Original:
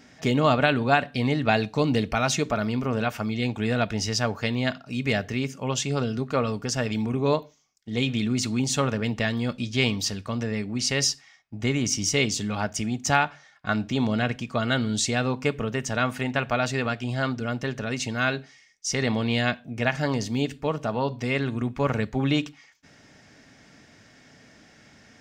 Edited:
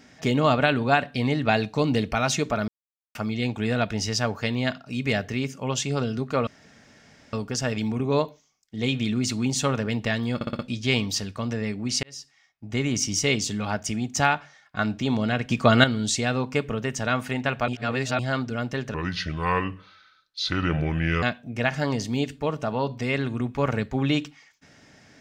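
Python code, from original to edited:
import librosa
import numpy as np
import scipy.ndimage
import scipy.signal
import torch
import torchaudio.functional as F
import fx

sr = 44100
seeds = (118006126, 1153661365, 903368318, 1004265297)

y = fx.edit(x, sr, fx.silence(start_s=2.68, length_s=0.47),
    fx.insert_room_tone(at_s=6.47, length_s=0.86),
    fx.stutter(start_s=9.49, slice_s=0.06, count=5),
    fx.fade_in_span(start_s=10.93, length_s=0.86),
    fx.clip_gain(start_s=14.4, length_s=0.34, db=8.5),
    fx.reverse_span(start_s=16.58, length_s=0.51),
    fx.speed_span(start_s=17.84, length_s=1.6, speed=0.7), tone=tone)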